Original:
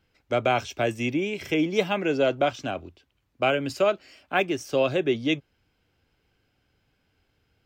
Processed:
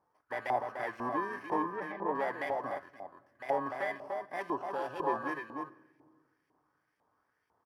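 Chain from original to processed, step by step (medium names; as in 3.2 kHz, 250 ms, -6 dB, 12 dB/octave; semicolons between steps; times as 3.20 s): bit-reversed sample order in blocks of 32 samples; resonant high shelf 1.9 kHz -7.5 dB, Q 1.5; Chebyshev shaper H 5 -9 dB, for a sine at -11 dBFS; 4.41–5.05 s: Butterworth band-stop 2 kHz, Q 2.4; de-esser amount 95%; 1.62–2.15 s: tape spacing loss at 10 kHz 35 dB; delay 296 ms -6 dB; reverberation RT60 1.6 s, pre-delay 7 ms, DRR 14.5 dB; 2.79–3.49 s: compression 1.5:1, threshold -41 dBFS, peak gain reduction 8 dB; LFO band-pass saw up 2 Hz 830–2300 Hz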